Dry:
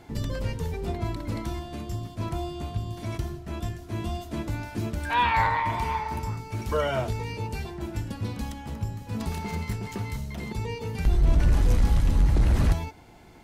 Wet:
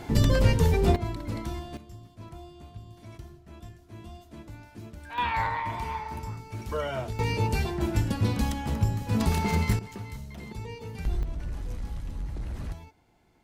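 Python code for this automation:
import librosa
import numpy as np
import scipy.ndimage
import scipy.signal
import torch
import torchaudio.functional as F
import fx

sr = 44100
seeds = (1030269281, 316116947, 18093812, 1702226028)

y = fx.gain(x, sr, db=fx.steps((0.0, 9.0), (0.96, -2.0), (1.77, -13.0), (5.18, -5.0), (7.19, 6.0), (9.79, -6.5), (11.23, -14.0)))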